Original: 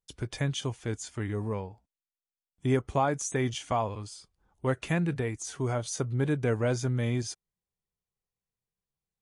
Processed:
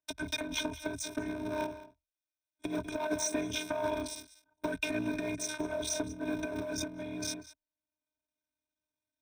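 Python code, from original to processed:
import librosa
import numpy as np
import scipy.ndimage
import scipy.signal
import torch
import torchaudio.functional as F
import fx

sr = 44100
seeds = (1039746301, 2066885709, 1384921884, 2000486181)

y = fx.cycle_switch(x, sr, every=3, mode='muted')
y = fx.robotise(y, sr, hz=306.0)
y = fx.high_shelf(y, sr, hz=6100.0, db=-9.0)
y = fx.leveller(y, sr, passes=3)
y = fx.ripple_eq(y, sr, per_octave=1.6, db=15)
y = y + 10.0 ** (-18.5 / 20.0) * np.pad(y, (int(193 * sr / 1000.0), 0))[:len(y)]
y = fx.over_compress(y, sr, threshold_db=-23.0, ratio=-0.5)
y = scipy.signal.sosfilt(scipy.signal.butter(2, 98.0, 'highpass', fs=sr, output='sos'), y)
y = fx.band_squash(y, sr, depth_pct=40)
y = F.gain(torch.from_numpy(y), -6.0).numpy()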